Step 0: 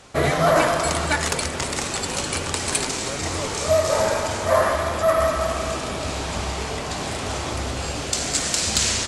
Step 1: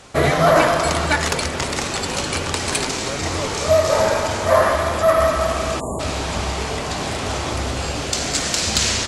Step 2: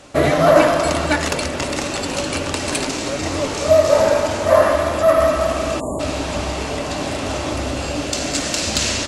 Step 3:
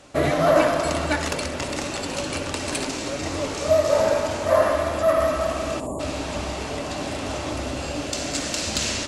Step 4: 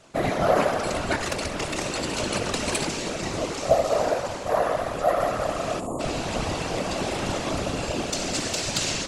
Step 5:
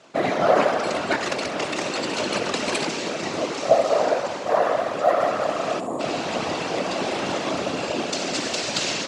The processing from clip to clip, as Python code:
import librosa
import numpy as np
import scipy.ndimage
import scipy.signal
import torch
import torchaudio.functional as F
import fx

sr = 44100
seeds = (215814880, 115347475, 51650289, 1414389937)

y1 = fx.spec_erase(x, sr, start_s=5.8, length_s=0.2, low_hz=1200.0, high_hz=6700.0)
y1 = fx.dynamic_eq(y1, sr, hz=8800.0, q=1.6, threshold_db=-40.0, ratio=4.0, max_db=-6)
y1 = F.gain(torch.from_numpy(y1), 3.5).numpy()
y2 = fx.small_body(y1, sr, hz=(290.0, 580.0, 2700.0), ring_ms=45, db=9)
y2 = F.gain(torch.from_numpy(y2), -1.5).numpy()
y3 = fx.room_flutter(y2, sr, wall_m=11.2, rt60_s=0.28)
y3 = F.gain(torch.from_numpy(y3), -5.5).numpy()
y4 = fx.rider(y3, sr, range_db=4, speed_s=2.0)
y4 = fx.whisperise(y4, sr, seeds[0])
y4 = F.gain(torch.from_numpy(y4), -2.5).numpy()
y5 = fx.bandpass_edges(y4, sr, low_hz=210.0, high_hz=5900.0)
y5 = y5 + 10.0 ** (-18.0 / 20.0) * np.pad(y5, (int(1065 * sr / 1000.0), 0))[:len(y5)]
y5 = F.gain(torch.from_numpy(y5), 3.0).numpy()